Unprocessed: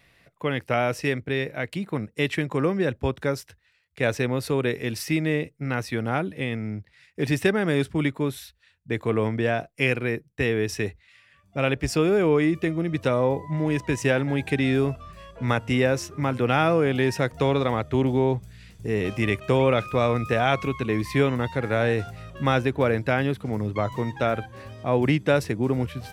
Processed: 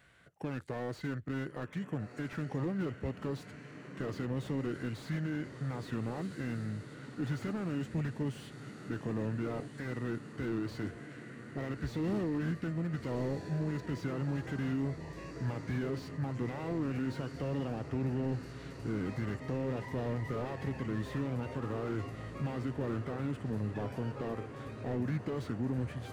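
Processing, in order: HPF 48 Hz; in parallel at -3 dB: compressor, threshold -37 dBFS, peak gain reduction 20 dB; on the sum: limiter -16 dBFS, peak gain reduction 10 dB; on a send: diffused feedback echo 1.42 s, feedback 69%, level -13 dB; on the sum: formant shift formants -4 st; slew limiter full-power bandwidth 32 Hz; gain -9 dB

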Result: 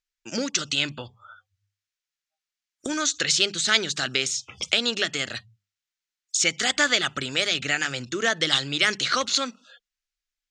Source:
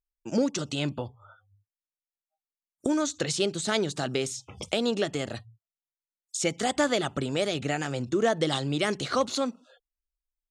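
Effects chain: band shelf 3100 Hz +14.5 dB 2.8 oct; notches 50/100/150/200 Hz; gain -4 dB

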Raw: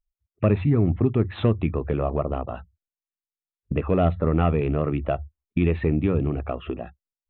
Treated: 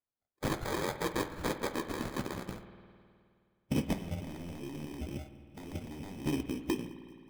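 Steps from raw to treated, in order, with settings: FFT order left unsorted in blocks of 64 samples; band-pass sweep 2900 Hz -> 280 Hz, 2.84–3.45; sine folder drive 10 dB, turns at -15.5 dBFS; harmonic-percussive split harmonic -9 dB; 3.93–6.26 negative-ratio compressor -38 dBFS, ratio -1; dark delay 0.193 s, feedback 55%, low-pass 410 Hz, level -21 dB; sample-rate reducer 2800 Hz, jitter 0%; flange 1.9 Hz, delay 6.7 ms, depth 5.8 ms, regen -58%; spring tank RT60 2.3 s, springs 52 ms, chirp 50 ms, DRR 10.5 dB

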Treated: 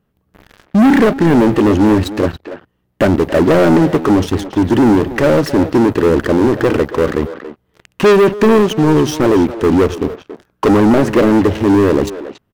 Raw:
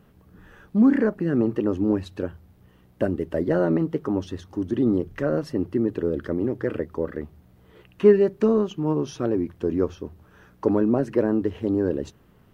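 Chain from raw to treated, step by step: sample leveller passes 5; speakerphone echo 0.28 s, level -8 dB

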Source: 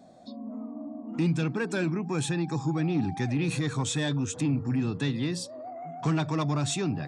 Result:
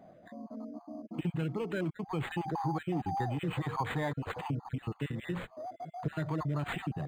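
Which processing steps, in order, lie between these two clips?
random spectral dropouts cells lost 31%; 2.37–4.69 bell 870 Hz +11 dB 1.1 oct; compressor 2.5:1, threshold -30 dBFS, peak gain reduction 6.5 dB; bell 250 Hz -7.5 dB 0.41 oct; decimation joined by straight lines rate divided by 8×

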